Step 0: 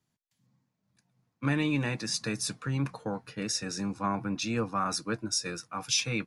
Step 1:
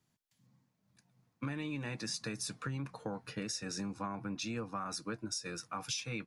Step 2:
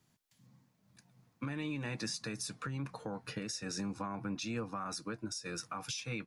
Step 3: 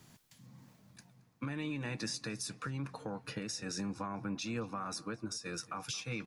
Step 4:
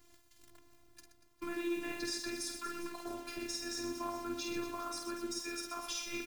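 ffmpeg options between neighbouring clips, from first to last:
-af "acompressor=threshold=-38dB:ratio=6,volume=1.5dB"
-af "alimiter=level_in=10dB:limit=-24dB:level=0:latency=1:release=452,volume=-10dB,volume=5.5dB"
-filter_complex "[0:a]areverse,acompressor=mode=upward:threshold=-47dB:ratio=2.5,areverse,asplit=2[a][b];[b]adelay=223,lowpass=f=3.4k:p=1,volume=-20dB,asplit=2[c][d];[d]adelay=223,lowpass=f=3.4k:p=1,volume=0.48,asplit=2[e][f];[f]adelay=223,lowpass=f=3.4k:p=1,volume=0.48,asplit=2[g][h];[h]adelay=223,lowpass=f=3.4k:p=1,volume=0.48[i];[a][c][e][g][i]amix=inputs=5:normalize=0"
-af "aecho=1:1:50|125|237.5|406.2|659.4:0.631|0.398|0.251|0.158|0.1,acrusher=bits=9:dc=4:mix=0:aa=0.000001,afftfilt=real='hypot(re,im)*cos(PI*b)':imag='0':win_size=512:overlap=0.75,volume=2dB"

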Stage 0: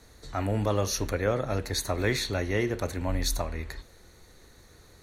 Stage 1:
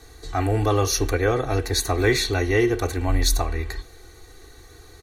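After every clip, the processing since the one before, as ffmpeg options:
-af "aecho=1:1:2.6:0.88,volume=4.5dB"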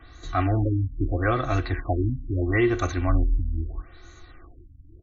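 -af "superequalizer=7b=0.251:9b=0.501:10b=1.58:14b=0.398,afftfilt=real='re*lt(b*sr/1024,280*pow(7400/280,0.5+0.5*sin(2*PI*0.77*pts/sr)))':imag='im*lt(b*sr/1024,280*pow(7400/280,0.5+0.5*sin(2*PI*0.77*pts/sr)))':win_size=1024:overlap=0.75"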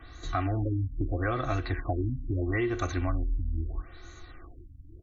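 -af "acompressor=threshold=-26dB:ratio=4"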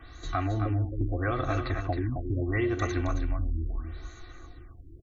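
-af "aecho=1:1:268:0.447"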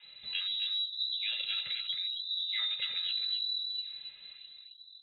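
-af "lowpass=f=3.4k:t=q:w=0.5098,lowpass=f=3.4k:t=q:w=0.6013,lowpass=f=3.4k:t=q:w=0.9,lowpass=f=3.4k:t=q:w=2.563,afreqshift=-4000,volume=-6.5dB"

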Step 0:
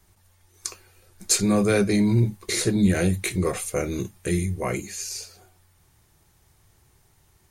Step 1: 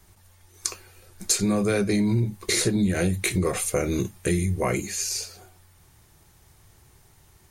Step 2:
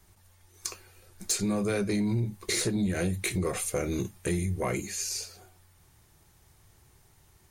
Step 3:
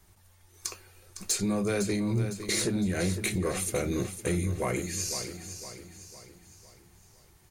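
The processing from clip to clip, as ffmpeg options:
-af "acompressor=threshold=-24dB:ratio=6,volume=4.5dB"
-af "asoftclip=type=tanh:threshold=-13.5dB,volume=-4.5dB"
-af "aecho=1:1:507|1014|1521|2028|2535:0.316|0.145|0.0669|0.0308|0.0142"

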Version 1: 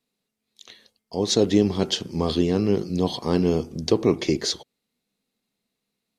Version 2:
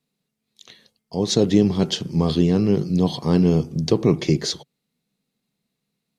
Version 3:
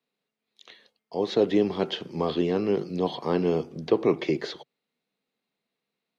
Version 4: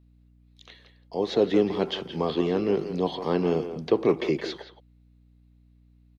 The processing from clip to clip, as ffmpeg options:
-af "equalizer=f=150:t=o:w=0.74:g=11"
-filter_complex "[0:a]acrossover=split=310 3900:gain=0.126 1 0.2[a][b][c];[a][b][c]amix=inputs=3:normalize=0,acrossover=split=3600[d][e];[e]acompressor=threshold=-47dB:ratio=4:attack=1:release=60[f];[d][f]amix=inputs=2:normalize=0"
-filter_complex "[0:a]asplit=2[a][b];[b]adelay=170,highpass=300,lowpass=3.4k,asoftclip=type=hard:threshold=-18dB,volume=-9dB[c];[a][c]amix=inputs=2:normalize=0,aeval=exprs='val(0)+0.00158*(sin(2*PI*60*n/s)+sin(2*PI*2*60*n/s)/2+sin(2*PI*3*60*n/s)/3+sin(2*PI*4*60*n/s)/4+sin(2*PI*5*60*n/s)/5)':c=same"

